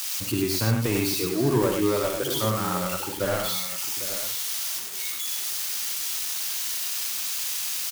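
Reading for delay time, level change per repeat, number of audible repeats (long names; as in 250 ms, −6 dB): 55 ms, repeats not evenly spaced, 4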